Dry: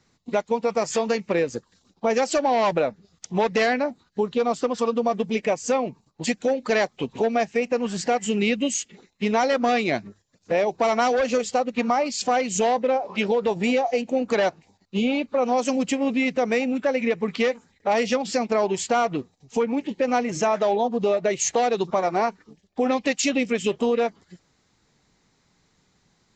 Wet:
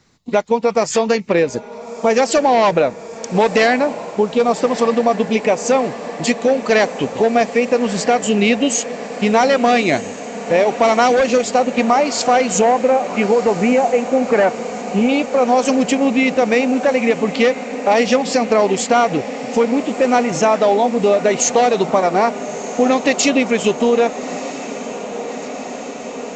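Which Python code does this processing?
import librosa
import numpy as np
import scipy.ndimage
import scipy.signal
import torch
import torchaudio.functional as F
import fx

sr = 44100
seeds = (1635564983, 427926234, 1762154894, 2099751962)

y = fx.lowpass(x, sr, hz=2300.0, slope=24, at=(12.61, 15.09))
y = fx.echo_diffused(y, sr, ms=1283, feedback_pct=79, wet_db=-14.5)
y = y * librosa.db_to_amplitude(7.5)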